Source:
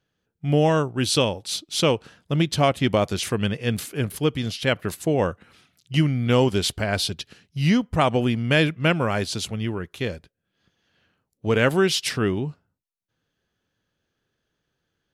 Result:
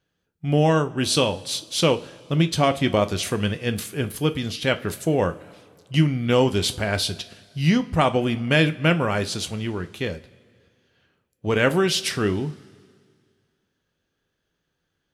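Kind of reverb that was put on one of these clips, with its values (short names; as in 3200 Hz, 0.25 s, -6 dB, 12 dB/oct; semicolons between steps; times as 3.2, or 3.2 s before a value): two-slope reverb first 0.25 s, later 2.1 s, from -21 dB, DRR 8 dB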